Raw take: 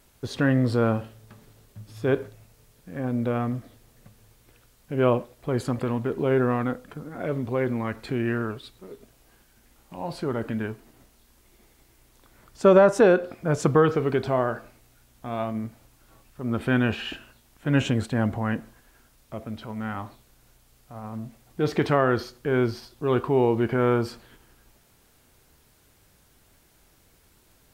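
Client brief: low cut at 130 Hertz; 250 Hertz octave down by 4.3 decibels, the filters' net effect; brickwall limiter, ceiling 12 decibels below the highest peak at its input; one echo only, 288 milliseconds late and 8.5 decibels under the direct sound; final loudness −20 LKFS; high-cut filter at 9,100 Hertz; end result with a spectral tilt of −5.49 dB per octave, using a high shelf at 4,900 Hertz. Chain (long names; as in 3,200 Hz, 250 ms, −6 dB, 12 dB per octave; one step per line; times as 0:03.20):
high-pass filter 130 Hz
low-pass filter 9,100 Hz
parametric band 250 Hz −5 dB
high-shelf EQ 4,900 Hz −4 dB
brickwall limiter −17.5 dBFS
single-tap delay 288 ms −8.5 dB
level +11.5 dB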